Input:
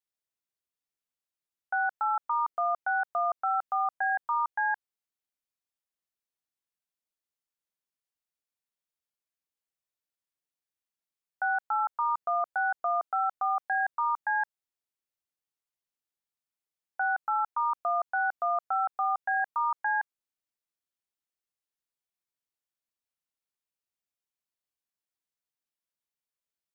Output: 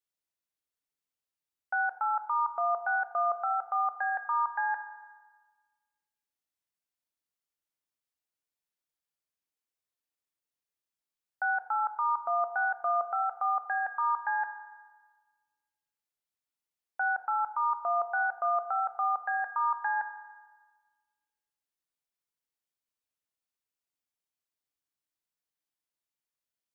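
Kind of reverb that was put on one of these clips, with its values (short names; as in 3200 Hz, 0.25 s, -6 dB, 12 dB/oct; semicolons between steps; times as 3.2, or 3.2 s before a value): FDN reverb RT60 1.4 s, low-frequency decay 1×, high-frequency decay 0.9×, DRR 8 dB; gain -1.5 dB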